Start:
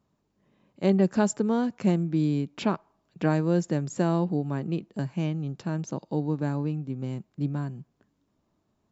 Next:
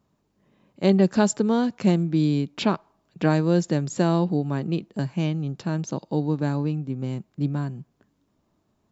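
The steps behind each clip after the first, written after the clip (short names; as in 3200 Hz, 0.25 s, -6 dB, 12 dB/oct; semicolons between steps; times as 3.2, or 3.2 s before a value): dynamic EQ 4000 Hz, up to +6 dB, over -55 dBFS, Q 1.5; gain +3.5 dB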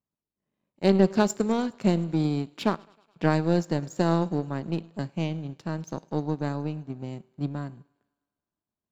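resonator 55 Hz, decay 0.63 s, harmonics all, mix 40%; thinning echo 0.104 s, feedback 77%, high-pass 230 Hz, level -20 dB; power-law curve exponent 1.4; gain +3.5 dB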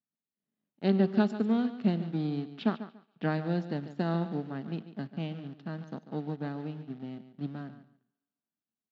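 in parallel at -11 dB: requantised 6-bit, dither none; on the sum: speaker cabinet 160–3800 Hz, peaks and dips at 230 Hz +6 dB, 340 Hz -5 dB, 540 Hz -7 dB, 1000 Hz -9 dB, 2300 Hz -6 dB; feedback echo 0.143 s, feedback 20%, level -13 dB; gain -6 dB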